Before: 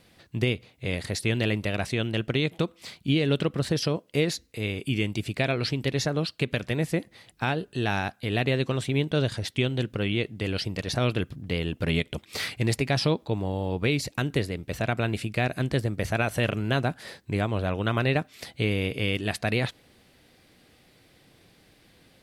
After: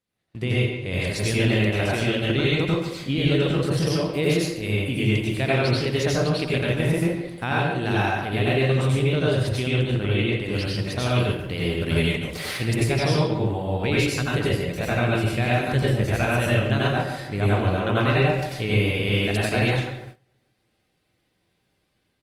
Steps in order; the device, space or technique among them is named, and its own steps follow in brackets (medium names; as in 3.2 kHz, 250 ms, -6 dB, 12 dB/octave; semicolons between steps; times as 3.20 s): 10.97–12.06 s: treble shelf 3.6 kHz -> 5.2 kHz +6 dB; bucket-brigade echo 145 ms, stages 2048, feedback 54%, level -15 dB; speakerphone in a meeting room (reverberation RT60 0.50 s, pre-delay 83 ms, DRR -5.5 dB; speakerphone echo 140 ms, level -9 dB; level rider gain up to 8 dB; gate -32 dBFS, range -20 dB; trim -7 dB; Opus 32 kbps 48 kHz)